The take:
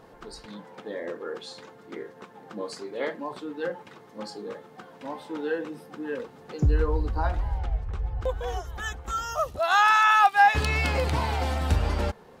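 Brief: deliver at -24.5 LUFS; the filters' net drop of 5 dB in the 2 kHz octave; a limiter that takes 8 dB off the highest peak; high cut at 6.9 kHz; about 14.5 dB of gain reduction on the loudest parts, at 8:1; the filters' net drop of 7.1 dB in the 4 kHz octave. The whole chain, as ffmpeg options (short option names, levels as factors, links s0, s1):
-af "lowpass=6900,equalizer=f=2000:t=o:g=-5,equalizer=f=4000:t=o:g=-7,acompressor=threshold=0.0316:ratio=8,volume=5.01,alimiter=limit=0.2:level=0:latency=1"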